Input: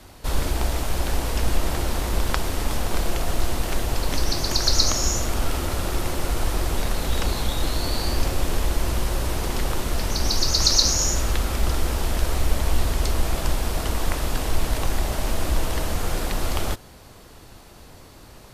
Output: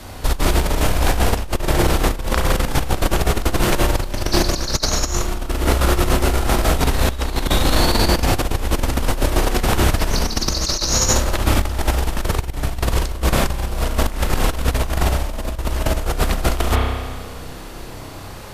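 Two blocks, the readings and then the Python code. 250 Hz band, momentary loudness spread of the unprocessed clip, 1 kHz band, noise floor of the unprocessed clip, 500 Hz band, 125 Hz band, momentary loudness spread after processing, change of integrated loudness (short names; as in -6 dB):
+8.0 dB, 7 LU, +7.5 dB, -46 dBFS, +7.5 dB, +6.0 dB, 8 LU, +5.0 dB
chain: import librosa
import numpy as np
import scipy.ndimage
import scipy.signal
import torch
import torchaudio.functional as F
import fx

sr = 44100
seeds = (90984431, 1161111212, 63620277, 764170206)

y = fx.rev_spring(x, sr, rt60_s=1.5, pass_ms=(31,), chirp_ms=65, drr_db=0.0)
y = fx.over_compress(y, sr, threshold_db=-22.0, ratio=-0.5)
y = F.gain(torch.from_numpy(y), 5.5).numpy()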